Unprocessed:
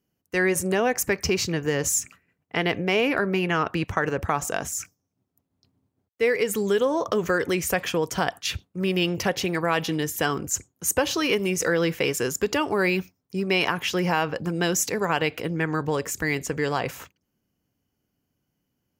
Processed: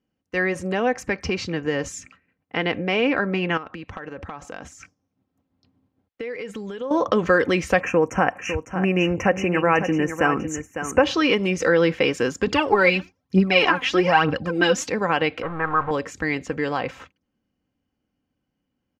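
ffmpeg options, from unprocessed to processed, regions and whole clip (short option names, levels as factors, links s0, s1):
-filter_complex "[0:a]asettb=1/sr,asplit=3[s0][s1][s2];[s0]atrim=end=3.574[s3];[s1]atrim=start=3.57:end=6.91,asetpts=PTS-STARTPTS,afade=t=in:d=0.004:c=qsin,afade=t=out:st=3.336:d=0.004:c=qsin,volume=3.76,asoftclip=hard,volume=0.266,acompressor=threshold=0.02:ratio=6:attack=3.2:release=140:knee=1:detection=peak[s4];[s2]atrim=start=6.906[s5];[s3][s4]acrossfade=d=0.004:c1=hsin:c2=qsin[s6];[s6][s5]acrossfade=d=0.004:c1=qsin:c2=hsin,asettb=1/sr,asplit=3[s7][s8][s9];[s7]atrim=end=7.804[s10];[s8]atrim=start=7.8:end=11.04,asetpts=PTS-STARTPTS,afade=t=in:d=0.004:c=qsin,afade=t=out:st=3.236:d=0.004:c=qsin,asuperstop=centerf=4000:order=12:qfactor=1.4,aecho=1:1:553:0.335,atrim=end_sample=142884[s11];[s9]atrim=start=11.036[s12];[s10][s11]acrossfade=d=0.004:c1=hsin:c2=qsin[s13];[s13][s12]acrossfade=d=0.004:c1=qsin:c2=hsin,asettb=1/sr,asplit=3[s14][s15][s16];[s14]atrim=end=12.474[s17];[s15]atrim=start=12.47:end=14.87,asetpts=PTS-STARTPTS,afade=t=in:d=0.004:c=qsin,afade=t=out:st=2.396:d=0.004:c=qsin,highpass=41,aphaser=in_gain=1:out_gain=1:delay=4.2:decay=0.68:speed=1.1:type=triangular[s18];[s16]atrim=start=14.866[s19];[s17][s18]acrossfade=d=0.004:c1=hsin:c2=qsin[s20];[s20][s19]acrossfade=d=0.004:c1=qsin:c2=hsin,asettb=1/sr,asplit=3[s21][s22][s23];[s21]atrim=end=15.424[s24];[s22]atrim=start=15.42:end=15.91,asetpts=PTS-STARTPTS,afade=t=in:d=0.004:c=qsin,afade=t=out:st=0.486:d=0.004:c=qsin,aeval=exprs='val(0)+0.5*0.0473*sgn(val(0))':c=same,lowpass=f=1200:t=q:w=2.8,equalizer=f=250:t=o:w=1.5:g=-14.5[s25];[s23]atrim=start=15.906[s26];[s24][s25]acrossfade=d=0.004:c1=hsin:c2=qsin[s27];[s27][s26]acrossfade=d=0.004:c1=qsin:c2=hsin,dynaudnorm=f=510:g=17:m=2.11,lowpass=3600,aecho=1:1:3.8:0.37"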